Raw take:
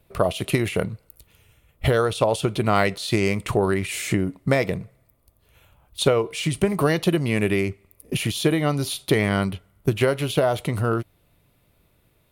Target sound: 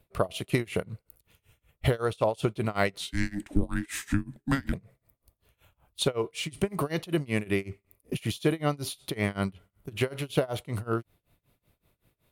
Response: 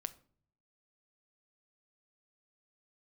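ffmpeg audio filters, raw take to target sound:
-filter_complex "[0:a]tremolo=f=5.3:d=0.95,asettb=1/sr,asplit=3[link_01][link_02][link_03];[link_01]atrim=end=3.004[link_04];[link_02]atrim=start=3:end=4.73,asetpts=PTS-STARTPTS,afade=type=in:duration=0.004:curve=qsin,afade=type=out:start_time=1.726:duration=0.004:curve=qsin,afreqshift=-410[link_05];[link_03]atrim=start=4.726[link_06];[link_04][link_05]acrossfade=duration=0.004:curve1=hsin:curve2=qsin[link_07];[link_07][link_06]acrossfade=duration=0.004:curve1=qsin:curve2=hsin,volume=-3.5dB"

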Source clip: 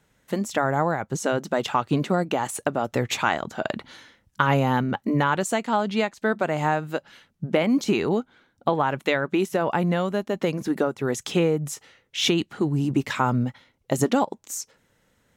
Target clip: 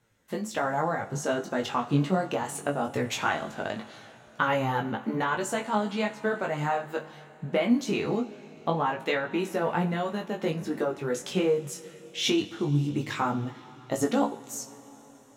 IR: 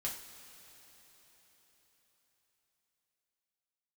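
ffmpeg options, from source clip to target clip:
-filter_complex "[0:a]flanger=delay=8.4:depth=5.6:regen=39:speed=1.3:shape=sinusoidal,asplit=2[link_01][link_02];[1:a]atrim=start_sample=2205,asetrate=39249,aresample=44100[link_03];[link_02][link_03]afir=irnorm=-1:irlink=0,volume=-7.5dB[link_04];[link_01][link_04]amix=inputs=2:normalize=0,flanger=delay=18:depth=3.2:speed=0.21"

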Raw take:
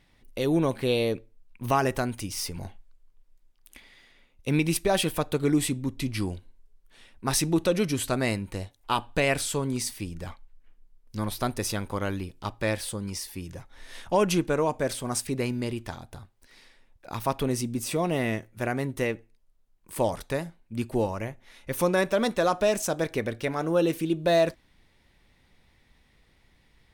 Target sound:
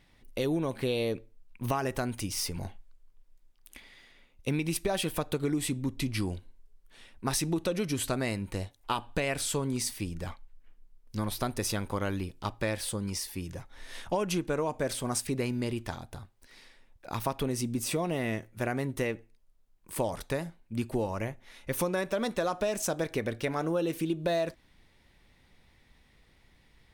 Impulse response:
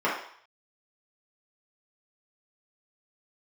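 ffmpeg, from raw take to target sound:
-af "acompressor=threshold=-26dB:ratio=6"

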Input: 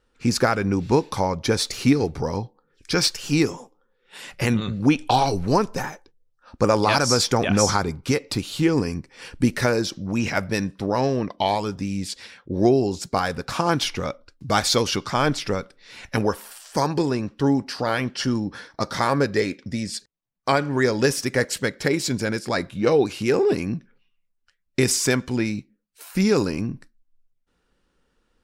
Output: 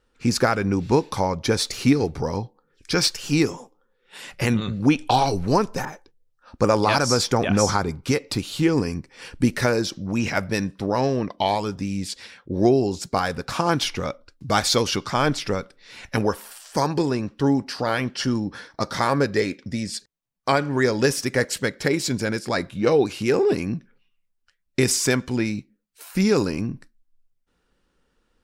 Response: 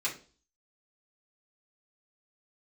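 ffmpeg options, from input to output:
-filter_complex "[0:a]asettb=1/sr,asplit=3[link_01][link_02][link_03];[link_01]atrim=end=5.854[link_04];[link_02]atrim=start=5.85:end=7.89,asetpts=PTS-STARTPTS,afade=type=in:duration=0.004:curve=qsin,afade=type=out:start_time=2.036:duration=0.004:curve=qsin,adynamicequalizer=threshold=0.0178:dfrequency=1800:dqfactor=0.7:tfrequency=1800:tqfactor=0.7:attack=5:release=100:ratio=0.375:range=1.5:mode=cutabove:tftype=highshelf[link_05];[link_03]atrim=start=7.886[link_06];[link_04][link_05]acrossfade=duration=0.004:curve1=hsin:curve2=qsin[link_07];[link_07][link_06]acrossfade=duration=0.004:curve1=qsin:curve2=hsin"

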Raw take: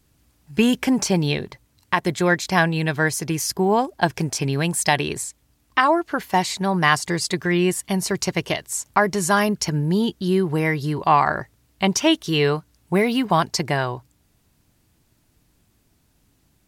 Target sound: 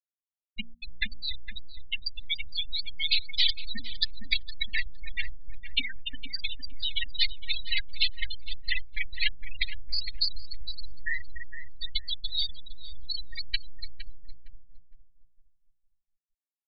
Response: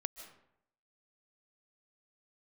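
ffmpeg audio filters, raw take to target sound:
-filter_complex "[0:a]aexciter=amount=14.2:drive=3.2:freq=4500,aeval=exprs='abs(val(0))':channel_layout=same,equalizer=frequency=125:width_type=o:width=1:gain=-5,equalizer=frequency=250:width_type=o:width=1:gain=11,equalizer=frequency=500:width_type=o:width=1:gain=-12,equalizer=frequency=2000:width_type=o:width=1:gain=8,equalizer=frequency=4000:width_type=o:width=1:gain=9,equalizer=frequency=8000:width_type=o:width=1:gain=5,acompressor=threshold=-24dB:ratio=3,highshelf=frequency=2200:gain=12,acrossover=split=6700[link_01][link_02];[link_02]acompressor=threshold=-32dB:ratio=4:attack=1:release=60[link_03];[link_01][link_03]amix=inputs=2:normalize=0,asplit=2[link_04][link_05];[link_05]aecho=0:1:290|536.5|746|924.1|1076:0.631|0.398|0.251|0.158|0.1[link_06];[link_04][link_06]amix=inputs=2:normalize=0,afftfilt=real='re*gte(hypot(re,im),0.562)':imag='im*gte(hypot(re,im),0.562)':win_size=1024:overlap=0.75,bandreject=frequency=58.5:width_type=h:width=4,bandreject=frequency=117:width_type=h:width=4,bandreject=frequency=175.5:width_type=h:width=4,bandreject=frequency=234:width_type=h:width=4,asplit=2[link_07][link_08];[link_08]adelay=461,lowpass=frequency=990:poles=1,volume=-5.5dB,asplit=2[link_09][link_10];[link_10]adelay=461,lowpass=frequency=990:poles=1,volume=0.3,asplit=2[link_11][link_12];[link_12]adelay=461,lowpass=frequency=990:poles=1,volume=0.3,asplit=2[link_13][link_14];[link_14]adelay=461,lowpass=frequency=990:poles=1,volume=0.3[link_15];[link_09][link_11][link_13][link_15]amix=inputs=4:normalize=0[link_16];[link_07][link_16]amix=inputs=2:normalize=0,volume=-5.5dB"

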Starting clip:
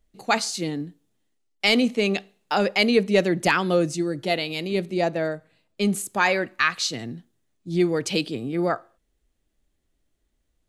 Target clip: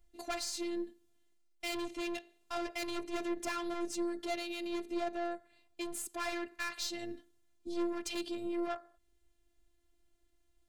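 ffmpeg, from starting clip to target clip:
ffmpeg -i in.wav -af "aeval=exprs='(tanh(15.8*val(0)+0.35)-tanh(0.35))/15.8':channel_layout=same,alimiter=level_in=6dB:limit=-24dB:level=0:latency=1:release=329,volume=-6dB,afftfilt=real='hypot(re,im)*cos(PI*b)':imag='0':win_size=512:overlap=0.75,volume=3dB" out.wav

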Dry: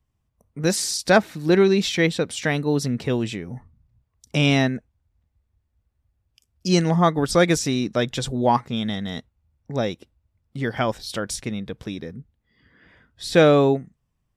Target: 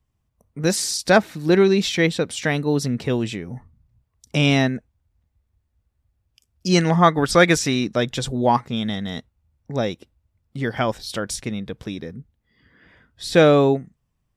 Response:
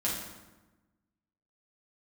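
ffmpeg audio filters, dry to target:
-filter_complex "[0:a]asettb=1/sr,asplit=3[link_01][link_02][link_03];[link_01]atrim=end=6.754[link_04];[link_02]atrim=start=6.75:end=7.85,asetpts=PTS-STARTPTS,afade=type=in:duration=0.004:curve=qsin,afade=type=out:start_time=1.096:duration=0.004:curve=qsin,equalizer=frequency=1800:width_type=o:width=2:gain=6[link_05];[link_03]atrim=start=7.846[link_06];[link_04][link_05]acrossfade=duration=0.004:curve1=hsin:curve2=qsin[link_07];[link_07][link_06]acrossfade=duration=0.004:curve1=qsin:curve2=hsin,volume=1dB"

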